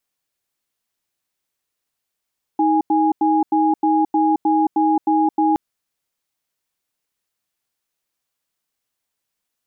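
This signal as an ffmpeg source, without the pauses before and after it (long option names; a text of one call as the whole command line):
ffmpeg -f lavfi -i "aevalsrc='0.158*(sin(2*PI*315*t)+sin(2*PI*826*t))*clip(min(mod(t,0.31),0.22-mod(t,0.31))/0.005,0,1)':duration=2.97:sample_rate=44100" out.wav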